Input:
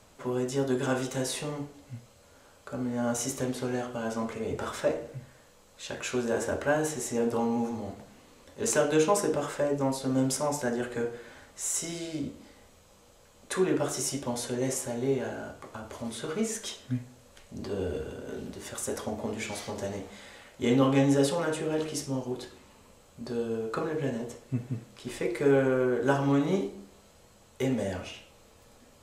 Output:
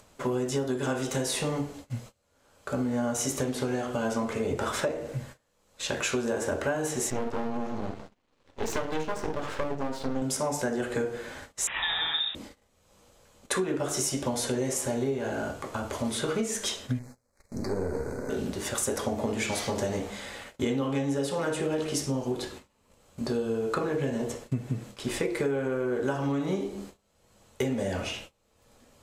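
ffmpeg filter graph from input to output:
-filter_complex "[0:a]asettb=1/sr,asplit=3[a][b][c];[a]atrim=end=7.104[d];[b]atrim=start=7.1:end=10.22,asetpts=PTS-STARTPTS,afade=t=in:d=0.004:c=qsin,afade=t=out:st=3.116:d=0.004:c=qsin,lowpass=4.6k,aeval=exprs='max(val(0),0)':c=same[e];[c]atrim=start=10.216[f];[d][e]acrossfade=d=0.004:c1=hsin:c2=qsin[g];[g][f]acrossfade=d=0.004:c1=qsin:c2=hsin,asettb=1/sr,asplit=3[h][i][j];[h]atrim=end=11.674[k];[i]atrim=start=11.67:end=12.35,asetpts=PTS-STARTPTS,afade=t=in:d=0.004:c=qsin,afade=t=out:st=0.676:d=0.004:c=qsin,equalizer=f=1.8k:t=o:w=2.2:g=12,lowpass=f=3.3k:t=q:w=0.5098,lowpass=f=3.3k:t=q:w=0.6013,lowpass=f=3.3k:t=q:w=0.9,lowpass=f=3.3k:t=q:w=2.563,afreqshift=-3900[l];[j]atrim=start=12.346[m];[k][l]acrossfade=d=0.004:c1=hsin:c2=qsin[n];[n][m]acrossfade=d=0.004:c1=qsin:c2=hsin,asettb=1/sr,asplit=3[o][p][q];[o]atrim=end=16.994[r];[p]atrim=start=16.99:end=18.3,asetpts=PTS-STARTPTS,afade=t=in:d=0.004:c=qsin,afade=t=out:st=1.306:d=0.004:c=qsin,aeval=exprs='if(lt(val(0),0),0.447*val(0),val(0))':c=same,asuperstop=centerf=3100:order=8:qfactor=1.7[s];[q]atrim=start=18.296[t];[r][s]acrossfade=d=0.004:c1=hsin:c2=qsin[u];[u][t]acrossfade=d=0.004:c1=qsin:c2=hsin,acompressor=threshold=-33dB:ratio=12,agate=range=-25dB:threshold=-51dB:ratio=16:detection=peak,acompressor=mode=upward:threshold=-52dB:ratio=2.5,volume=8dB"

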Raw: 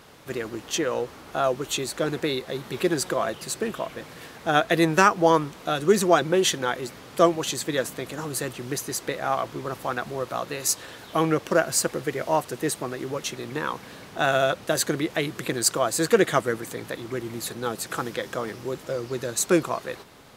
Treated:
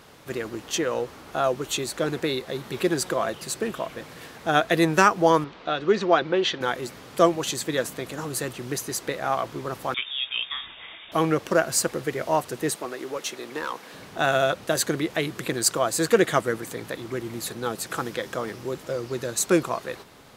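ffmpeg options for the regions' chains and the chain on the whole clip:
-filter_complex "[0:a]asettb=1/sr,asplit=3[a][b][c];[a]atrim=end=5.444[d];[b]atrim=start=5.44:end=6.61,asetpts=PTS-STARTPTS,afade=t=in:d=0.004:c=qsin,afade=t=out:st=1.166:d=0.004:c=qsin,lowpass=f=4.4k:w=0.5412,lowpass=f=4.4k:w=1.3066,equalizer=f=120:t=o:w=2.1:g=-7[e];[c]atrim=start=6.606[f];[d][e]acrossfade=d=0.004:c1=hsin:c2=qsin[g];[g][f]acrossfade=d=0.004:c1=qsin:c2=hsin,asettb=1/sr,asplit=3[h][i][j];[h]atrim=end=9.944[k];[i]atrim=start=9.94:end=11.12,asetpts=PTS-STARTPTS,afade=t=in:d=0.004:c=qsin,afade=t=out:st=1.176:d=0.004:c=qsin,asplit=2[l][m];[m]adelay=24,volume=-14dB[n];[l][n]amix=inputs=2:normalize=0,atrim=end_sample=52038,lowpass=f=3.2k:t=q:w=0.5098,lowpass=f=3.2k:t=q:w=0.6013,lowpass=f=3.2k:t=q:w=0.9,lowpass=f=3.2k:t=q:w=2.563,afreqshift=-3800[o];[j]atrim=start=11.116[p];[k][o]acrossfade=d=0.004:c1=hsin:c2=qsin[q];[q][p]acrossfade=d=0.004:c1=qsin:c2=hsin,asettb=1/sr,asplit=3[r][s][t];[r]atrim=end=12.764[u];[s]atrim=start=12.76:end=13.94,asetpts=PTS-STARTPTS,afade=t=in:d=0.004:c=qsin,afade=t=out:st=1.176:d=0.004:c=qsin,highpass=310,asoftclip=type=hard:threshold=-22.5dB[v];[t]atrim=start=13.936[w];[u][v]acrossfade=d=0.004:c1=hsin:c2=qsin[x];[x][w]acrossfade=d=0.004:c1=qsin:c2=hsin"

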